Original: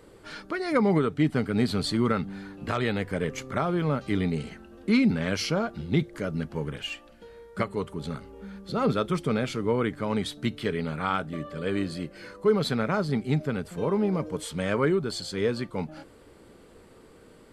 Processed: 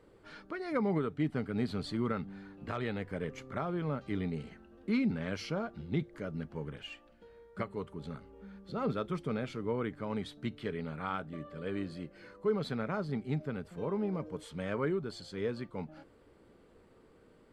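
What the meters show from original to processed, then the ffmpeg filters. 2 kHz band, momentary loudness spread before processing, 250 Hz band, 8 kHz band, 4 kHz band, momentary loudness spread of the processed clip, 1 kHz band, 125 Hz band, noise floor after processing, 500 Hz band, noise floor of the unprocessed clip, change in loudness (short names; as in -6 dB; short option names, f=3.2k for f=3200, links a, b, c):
-10.0 dB, 12 LU, -8.5 dB, under -15 dB, -12.5 dB, 13 LU, -9.0 dB, -8.5 dB, -62 dBFS, -8.5 dB, -53 dBFS, -9.0 dB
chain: -af "highshelf=f=4.8k:g=-11,volume=-8.5dB"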